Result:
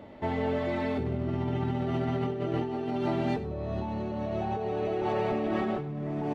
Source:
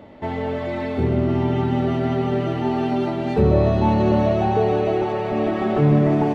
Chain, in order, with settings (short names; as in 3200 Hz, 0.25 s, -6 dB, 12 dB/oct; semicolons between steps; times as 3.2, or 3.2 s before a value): 2.26–2.93 bell 410 Hz +6.5 dB 0.94 oct; negative-ratio compressor -23 dBFS, ratio -1; echo 96 ms -15 dB; gain -7.5 dB